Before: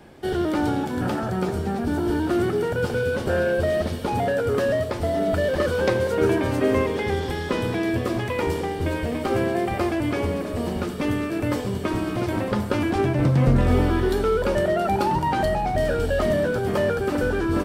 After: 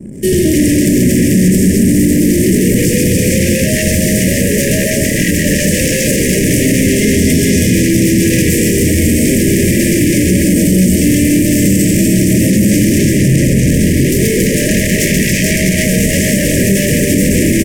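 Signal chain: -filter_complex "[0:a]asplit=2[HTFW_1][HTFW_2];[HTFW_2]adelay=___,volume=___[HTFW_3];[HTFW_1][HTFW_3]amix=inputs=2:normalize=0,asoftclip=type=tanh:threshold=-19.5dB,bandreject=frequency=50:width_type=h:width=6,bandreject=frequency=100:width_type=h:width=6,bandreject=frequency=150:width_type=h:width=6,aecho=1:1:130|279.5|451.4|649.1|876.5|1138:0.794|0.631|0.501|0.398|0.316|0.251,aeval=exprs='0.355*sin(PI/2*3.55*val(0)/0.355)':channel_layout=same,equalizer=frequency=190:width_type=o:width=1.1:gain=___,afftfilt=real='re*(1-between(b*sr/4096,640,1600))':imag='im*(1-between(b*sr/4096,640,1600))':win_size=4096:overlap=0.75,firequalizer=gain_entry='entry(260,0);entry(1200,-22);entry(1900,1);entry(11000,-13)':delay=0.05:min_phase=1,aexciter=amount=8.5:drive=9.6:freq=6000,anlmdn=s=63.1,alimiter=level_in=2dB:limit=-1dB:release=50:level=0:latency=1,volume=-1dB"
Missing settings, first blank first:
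27, -12.5dB, 10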